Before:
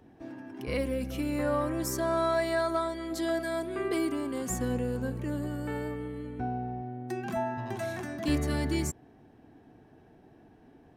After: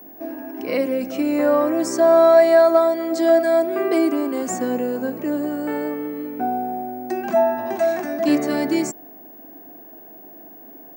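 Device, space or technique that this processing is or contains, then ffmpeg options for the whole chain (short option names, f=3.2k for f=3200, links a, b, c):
old television with a line whistle: -af "highpass=f=210:w=0.5412,highpass=f=210:w=1.3066,equalizer=f=310:t=q:w=4:g=4,equalizer=f=660:t=q:w=4:g=9,equalizer=f=3.4k:t=q:w=4:g=-7,lowpass=f=8.3k:w=0.5412,lowpass=f=8.3k:w=1.3066,aeval=exprs='val(0)+0.00355*sin(2*PI*15625*n/s)':c=same,volume=8dB"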